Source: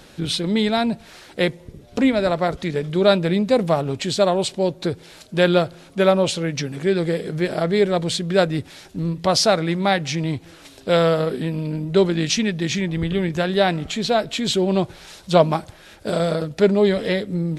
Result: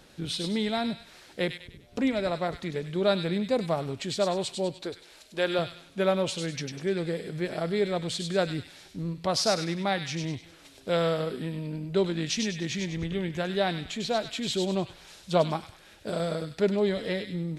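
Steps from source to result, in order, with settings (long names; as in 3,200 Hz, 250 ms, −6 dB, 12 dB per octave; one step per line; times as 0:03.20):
0:04.81–0:05.59: parametric band 140 Hz −14.5 dB 1.2 octaves
on a send: delay with a high-pass on its return 99 ms, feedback 38%, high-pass 2,200 Hz, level −4 dB
on the sum: level −9 dB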